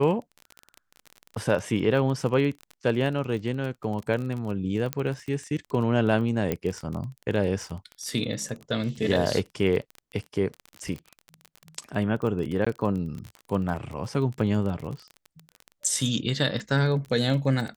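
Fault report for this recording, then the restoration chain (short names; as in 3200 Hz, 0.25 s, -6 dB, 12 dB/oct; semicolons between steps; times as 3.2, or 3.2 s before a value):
crackle 29/s -31 dBFS
4.93 pop -12 dBFS
6.52 pop -13 dBFS
12.65–12.66 gap 15 ms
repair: de-click; interpolate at 12.65, 15 ms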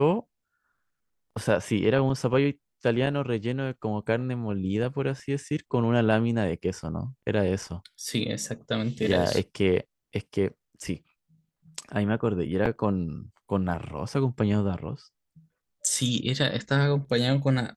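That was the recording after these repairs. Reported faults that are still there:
none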